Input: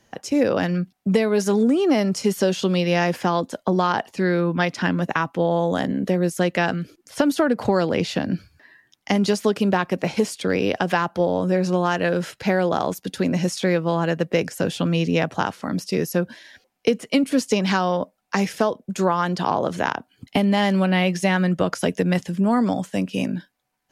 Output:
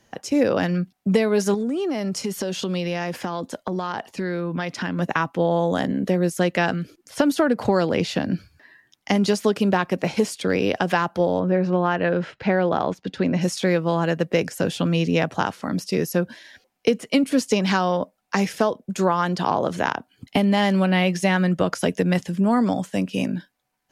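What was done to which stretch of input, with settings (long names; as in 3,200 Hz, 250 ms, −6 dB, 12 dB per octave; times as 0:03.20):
0:01.54–0:04.99: downward compressor 5 to 1, threshold −22 dBFS
0:11.39–0:13.40: low-pass filter 2,200 Hz → 3,900 Hz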